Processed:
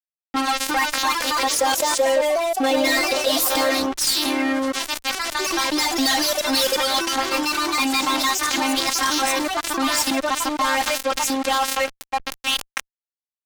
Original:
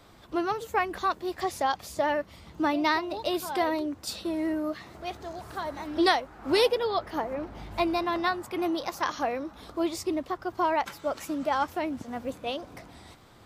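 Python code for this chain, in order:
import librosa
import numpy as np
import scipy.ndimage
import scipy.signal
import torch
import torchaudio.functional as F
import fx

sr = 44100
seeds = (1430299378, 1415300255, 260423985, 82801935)

y = np.diff(x, prepend=0.0)
y = fx.env_lowpass(y, sr, base_hz=1700.0, full_db=-36.0)
y = fx.robotise(y, sr, hz=268.0)
y = fx.filter_sweep_highpass(y, sr, from_hz=310.0, to_hz=1200.0, start_s=11.53, end_s=12.39, q=4.3)
y = fx.fuzz(y, sr, gain_db=45.0, gate_db=-52.0)
y = fx.peak_eq(y, sr, hz=500.0, db=13.5, octaves=0.46, at=(1.14, 3.71))
y = fx.echo_pitch(y, sr, ms=387, semitones=2, count=3, db_per_echo=-6.0)
y = fx.env_flatten(y, sr, amount_pct=70)
y = y * librosa.db_to_amplitude(-8.5)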